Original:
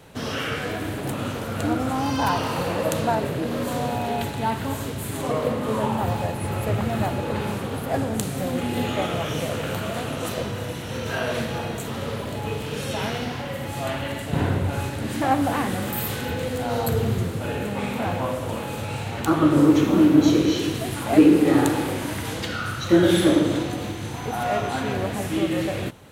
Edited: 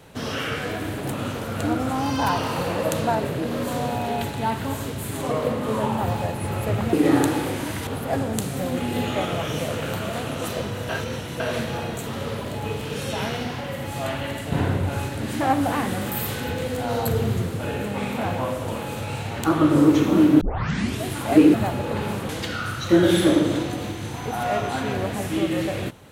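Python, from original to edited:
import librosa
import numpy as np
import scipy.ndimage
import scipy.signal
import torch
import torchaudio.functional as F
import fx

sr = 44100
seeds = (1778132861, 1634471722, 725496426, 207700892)

y = fx.edit(x, sr, fx.swap(start_s=6.93, length_s=0.75, other_s=21.35, other_length_s=0.94),
    fx.reverse_span(start_s=10.7, length_s=0.51),
    fx.tape_start(start_s=20.22, length_s=0.62), tone=tone)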